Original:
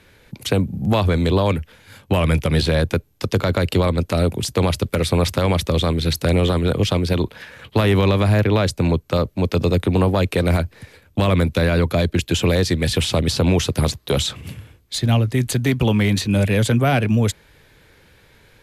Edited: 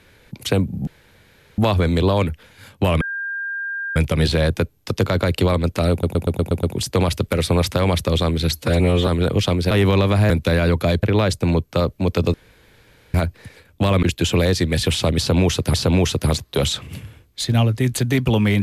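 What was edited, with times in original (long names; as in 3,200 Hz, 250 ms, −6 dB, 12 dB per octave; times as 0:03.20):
0:00.87: splice in room tone 0.71 s
0:02.30: insert tone 1,600 Hz −23.5 dBFS 0.95 s
0:04.25: stutter 0.12 s, 7 plays
0:06.15–0:06.51: time-stretch 1.5×
0:07.15–0:07.81: remove
0:09.71–0:10.51: fill with room tone
0:11.40–0:12.13: move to 0:08.40
0:13.28–0:13.84: repeat, 2 plays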